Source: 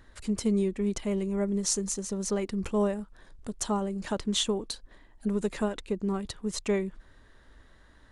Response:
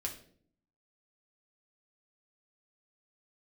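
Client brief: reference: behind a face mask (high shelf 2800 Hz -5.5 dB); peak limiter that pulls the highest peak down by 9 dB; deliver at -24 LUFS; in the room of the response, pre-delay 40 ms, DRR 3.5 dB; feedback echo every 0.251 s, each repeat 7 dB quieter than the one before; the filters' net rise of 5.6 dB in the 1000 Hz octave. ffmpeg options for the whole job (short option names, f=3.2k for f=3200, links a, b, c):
-filter_complex "[0:a]equalizer=f=1k:t=o:g=7.5,alimiter=limit=-23dB:level=0:latency=1,aecho=1:1:251|502|753|1004|1255:0.447|0.201|0.0905|0.0407|0.0183,asplit=2[a][b];[1:a]atrim=start_sample=2205,adelay=40[c];[b][c]afir=irnorm=-1:irlink=0,volume=-4dB[d];[a][d]amix=inputs=2:normalize=0,highshelf=f=2.8k:g=-5.5,volume=7dB"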